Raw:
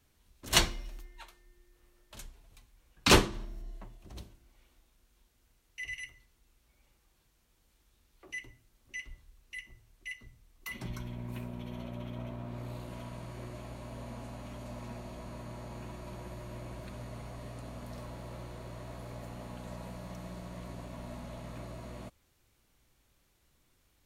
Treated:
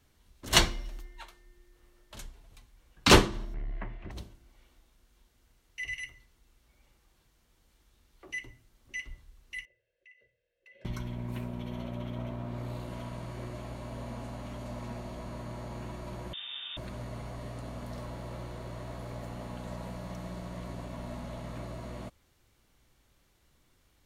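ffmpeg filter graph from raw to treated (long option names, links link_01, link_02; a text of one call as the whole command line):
ffmpeg -i in.wav -filter_complex "[0:a]asettb=1/sr,asplit=3[link_01][link_02][link_03];[link_01]atrim=end=3.544[link_04];[link_02]atrim=start=3.54:end=4.11,asetpts=PTS-STARTPTS,afade=type=in:duration=0.004:curve=qsin,afade=type=out:start_time=0.566:duration=0.004:curve=qsin,aeval=exprs='0.0178*sin(PI/2*1.41*val(0)/0.0178)':channel_layout=same,lowpass=frequency=2100:width_type=q:width=3[link_05];[link_03]atrim=start=4.106[link_06];[link_04][link_05]acrossfade=duration=0.004:curve1=hsin:curve2=qsin[link_07];[link_07][link_06]acrossfade=duration=0.004:curve1=qsin:curve2=hsin,asettb=1/sr,asplit=3[link_08][link_09][link_10];[link_08]atrim=end=9.654[link_11];[link_09]atrim=start=9.65:end=10.85,asetpts=PTS-STARTPTS,afade=type=in:duration=0.004:curve=qsin,afade=type=out:start_time=1.196:duration=0.004:curve=qsin,asplit=3[link_12][link_13][link_14];[link_12]bandpass=frequency=530:width_type=q:width=8,volume=0dB[link_15];[link_13]bandpass=frequency=1840:width_type=q:width=8,volume=-6dB[link_16];[link_14]bandpass=frequency=2480:width_type=q:width=8,volume=-9dB[link_17];[link_15][link_16][link_17]amix=inputs=3:normalize=0,aecho=1:1:1.9:0.76,atrim=end_sample=52920,acompressor=threshold=-57dB:ratio=6:attack=3.2:release=140:knee=1:detection=peak[link_18];[link_10]atrim=start=10.846[link_19];[link_11][link_18]acrossfade=duration=0.004:curve1=hsin:curve2=qsin[link_20];[link_20][link_19]acrossfade=duration=0.004:curve1=qsin:curve2=hsin,asettb=1/sr,asplit=3[link_21][link_22][link_23];[link_21]atrim=end=16.334[link_24];[link_22]atrim=start=16.33:end=16.77,asetpts=PTS-STARTPTS,afade=type=in:duration=0.004:curve=qsin,afade=type=out:start_time=0.436:duration=0.004:curve=qsin,asplit=2[link_25][link_26];[link_26]adelay=46,volume=-4dB[link_27];[link_25][link_27]amix=inputs=2:normalize=0,atrim=end_sample=19404,lowpass=frequency=3100:width_type=q:width=0.5098,lowpass=frequency=3100:width_type=q:width=0.6013,lowpass=frequency=3100:width_type=q:width=0.9,lowpass=frequency=3100:width_type=q:width=2.563,afreqshift=-3700[link_28];[link_23]atrim=start=16.766[link_29];[link_24][link_28]acrossfade=duration=0.004:curve1=hsin:curve2=qsin[link_30];[link_30][link_29]acrossfade=duration=0.004:curve1=qsin:curve2=hsin,highshelf=frequency=7500:gain=-5,bandreject=frequency=2500:width=25,volume=3.5dB" out.wav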